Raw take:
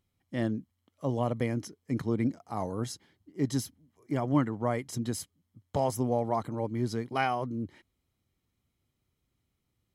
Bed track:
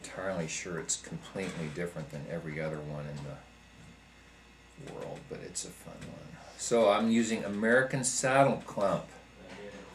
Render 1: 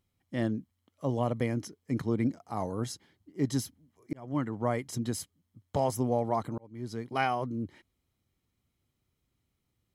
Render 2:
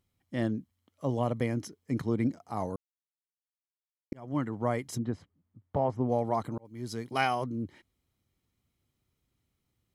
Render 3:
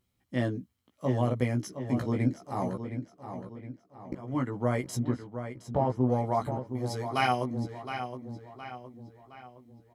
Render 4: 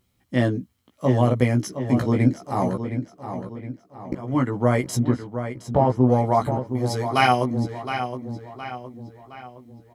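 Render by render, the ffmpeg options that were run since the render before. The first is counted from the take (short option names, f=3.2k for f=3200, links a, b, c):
-filter_complex "[0:a]asplit=3[a][b][c];[a]atrim=end=4.13,asetpts=PTS-STARTPTS,afade=t=out:st=4.126:d=0.004:c=hsin[d];[b]atrim=start=4.13:end=6.58,asetpts=PTS-STARTPTS,afade=t=in:d=0.46,afade=t=out:st=2.446:d=0.004:c=hsin[e];[c]atrim=start=6.58,asetpts=PTS-STARTPTS,afade=t=in:d=0.64[f];[d][e][f]concat=n=3:v=0:a=1"
-filter_complex "[0:a]asplit=3[a][b][c];[a]afade=t=out:st=4.97:d=0.02[d];[b]lowpass=1.6k,afade=t=in:st=4.97:d=0.02,afade=t=out:st=6.08:d=0.02[e];[c]afade=t=in:st=6.08:d=0.02[f];[d][e][f]amix=inputs=3:normalize=0,asettb=1/sr,asplit=3[g][h][i];[g]atrim=end=6.654[j];[h]atrim=start=6.65:end=7.44,asetpts=PTS-STARTPTS,afade=t=in:d=0.004:c=qsin,afade=t=out:st=0.786:d=0.004:c=qsin,highshelf=f=3.4k:g=8.5[k];[i]atrim=start=7.436[l];[j][k]acrossfade=d=0.004:c1=hsin:c2=qsin[m];[m][l]acrossfade=d=0.004:c1=qsin:c2=hsin,asplit=3[n][o][p];[n]atrim=end=2.76,asetpts=PTS-STARTPTS,afade=t=out:st=2.756:d=0.004:c=hsin[q];[o]atrim=start=2.76:end=4.12,asetpts=PTS-STARTPTS,volume=0[r];[p]atrim=start=4.12,asetpts=PTS-STARTPTS,afade=t=in:d=0.004:c=hsin[s];[q][r][s]concat=n=3:v=0:a=1"
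-filter_complex "[0:a]asplit=2[a][b];[b]adelay=16,volume=-3dB[c];[a][c]amix=inputs=2:normalize=0,asplit=2[d][e];[e]adelay=716,lowpass=f=4.6k:p=1,volume=-9dB,asplit=2[f][g];[g]adelay=716,lowpass=f=4.6k:p=1,volume=0.47,asplit=2[h][i];[i]adelay=716,lowpass=f=4.6k:p=1,volume=0.47,asplit=2[j][k];[k]adelay=716,lowpass=f=4.6k:p=1,volume=0.47,asplit=2[l][m];[m]adelay=716,lowpass=f=4.6k:p=1,volume=0.47[n];[d][f][h][j][l][n]amix=inputs=6:normalize=0"
-af "volume=8.5dB"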